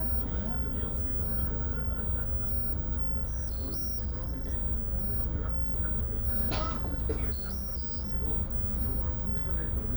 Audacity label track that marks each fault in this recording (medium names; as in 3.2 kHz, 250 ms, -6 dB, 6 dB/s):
3.240000	4.540000	clipped -29.5 dBFS
7.310000	8.130000	clipped -31 dBFS